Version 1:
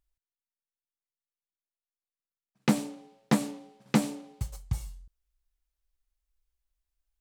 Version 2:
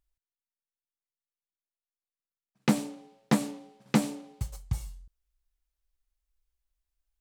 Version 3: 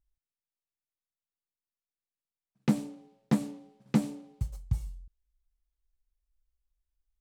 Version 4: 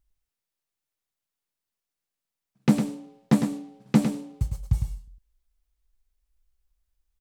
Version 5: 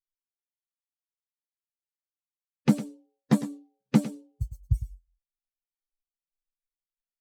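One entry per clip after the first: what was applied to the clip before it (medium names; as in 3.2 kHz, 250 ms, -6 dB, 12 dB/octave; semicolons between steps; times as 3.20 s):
no audible change
bass shelf 360 Hz +11 dB; trim -9 dB
delay 105 ms -7 dB; trim +6 dB
expander on every frequency bin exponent 2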